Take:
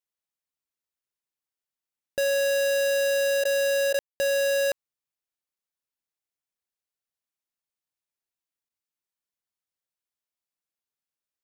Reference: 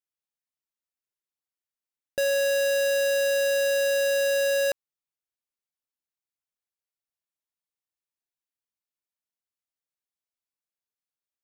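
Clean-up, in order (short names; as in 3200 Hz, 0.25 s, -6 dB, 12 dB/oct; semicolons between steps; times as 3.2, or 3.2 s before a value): room tone fill 3.99–4.2; interpolate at 3.44/3.93/8.69, 10 ms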